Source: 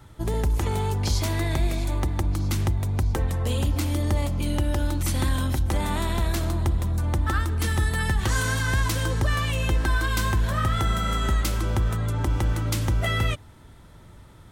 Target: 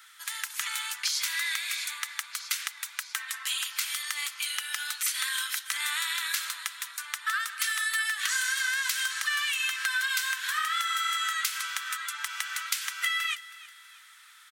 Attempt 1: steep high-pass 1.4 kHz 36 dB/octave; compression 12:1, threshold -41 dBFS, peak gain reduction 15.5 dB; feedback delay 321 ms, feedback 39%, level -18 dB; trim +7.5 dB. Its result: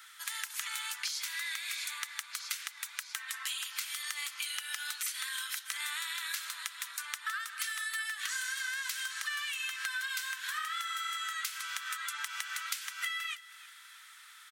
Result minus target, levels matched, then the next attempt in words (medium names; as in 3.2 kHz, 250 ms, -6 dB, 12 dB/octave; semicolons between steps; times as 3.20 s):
compression: peak gain reduction +8 dB
steep high-pass 1.4 kHz 36 dB/octave; compression 12:1, threshold -32.5 dBFS, peak gain reduction 8 dB; feedback delay 321 ms, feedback 39%, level -18 dB; trim +7.5 dB